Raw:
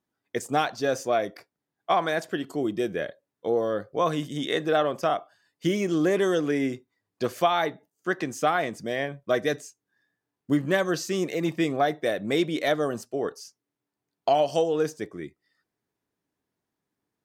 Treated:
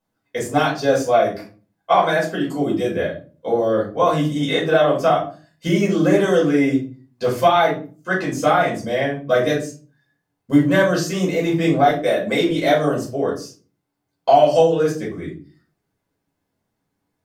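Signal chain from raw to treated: 11.89–12.49 s: Bessel high-pass 190 Hz; simulated room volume 210 m³, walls furnished, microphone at 5.2 m; trim -2.5 dB

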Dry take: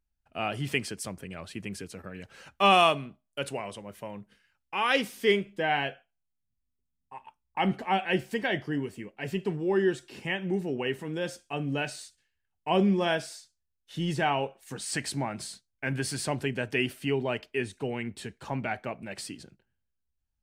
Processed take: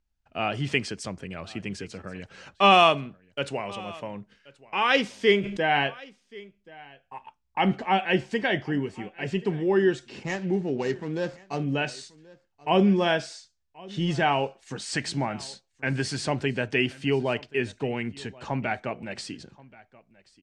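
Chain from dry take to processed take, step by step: 10.23–11.64 s: median filter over 15 samples; low-pass 7.2 kHz 24 dB/octave; delay 1080 ms -22.5 dB; 5.41–5.87 s: decay stretcher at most 35 dB/s; trim +3.5 dB

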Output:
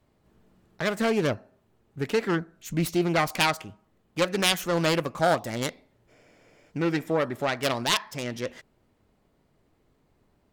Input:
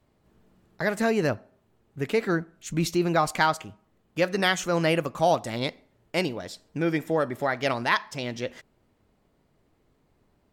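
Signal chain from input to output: self-modulated delay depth 0.29 ms; spectral freeze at 6.11 s, 0.60 s

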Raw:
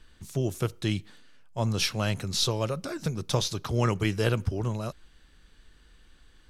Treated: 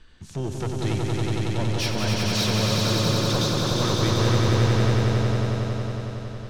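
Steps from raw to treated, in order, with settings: low-pass 6.3 kHz 12 dB/octave; saturation -25.5 dBFS, distortion -9 dB; echo with a slow build-up 92 ms, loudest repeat 5, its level -3 dB; trim +3 dB

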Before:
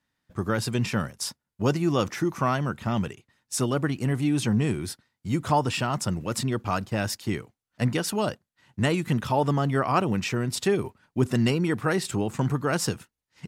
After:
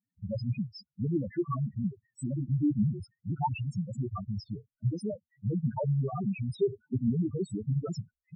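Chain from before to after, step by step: time stretch by phase-locked vocoder 0.62×; loudest bins only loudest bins 2

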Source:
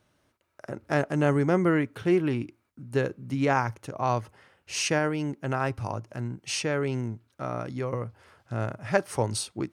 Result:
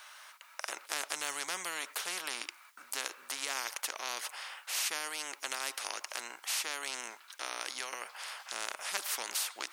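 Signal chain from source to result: high-pass 970 Hz 24 dB/octave; spectrum-flattening compressor 4:1; trim -2.5 dB

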